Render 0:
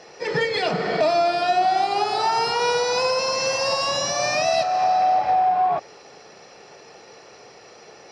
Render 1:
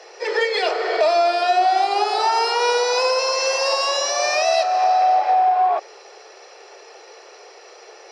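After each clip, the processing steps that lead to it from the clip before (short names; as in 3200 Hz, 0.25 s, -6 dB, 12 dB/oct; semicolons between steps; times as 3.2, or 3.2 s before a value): steep high-pass 350 Hz 72 dB/oct; gain +2.5 dB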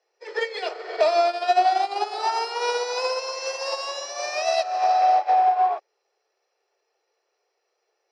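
upward expander 2.5:1, over -35 dBFS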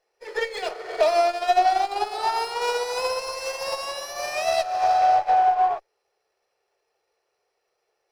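running maximum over 3 samples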